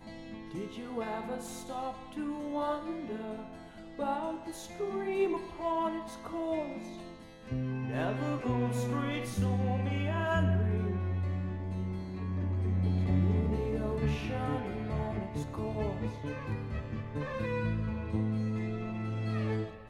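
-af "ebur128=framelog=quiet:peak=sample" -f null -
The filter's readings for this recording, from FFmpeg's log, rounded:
Integrated loudness:
  I:         -34.1 LUFS
  Threshold: -44.3 LUFS
Loudness range:
  LRA:         5.8 LU
  Threshold: -54.1 LUFS
  LRA low:   -37.6 LUFS
  LRA high:  -31.8 LUFS
Sample peak:
  Peak:      -16.7 dBFS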